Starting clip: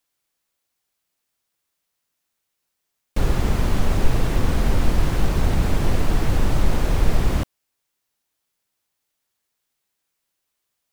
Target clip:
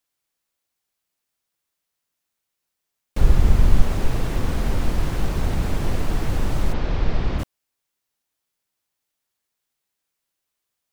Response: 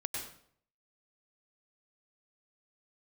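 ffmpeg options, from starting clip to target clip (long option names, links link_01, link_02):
-filter_complex "[0:a]asettb=1/sr,asplit=3[link_01][link_02][link_03];[link_01]atrim=end=3.214[link_04];[link_02]atrim=start=3.21:end=3.82,asetpts=PTS-STARTPTS,afade=type=in:duration=0.004:curve=qsin,afade=type=out:start_time=0.606:duration=0.004:curve=qsin,lowshelf=frequency=120:gain=10.5[link_05];[link_03]atrim=start=3.816[link_06];[link_04][link_05]acrossfade=duration=0.004:curve1=hsin:curve2=qsin[link_07];[link_07][link_06]acrossfade=duration=0.004:curve1=qsin:curve2=hsin,asplit=3[link_08][link_09][link_10];[link_08]afade=type=out:start_time=6.72:duration=0.02[link_11];[link_09]lowpass=frequency=5000:width=0.5412,lowpass=frequency=5000:width=1.3066,afade=type=in:start_time=6.72:duration=0.02,afade=type=out:start_time=7.38:duration=0.02[link_12];[link_10]afade=type=in:start_time=7.38:duration=0.02[link_13];[link_11][link_12][link_13]amix=inputs=3:normalize=0,volume=-3dB"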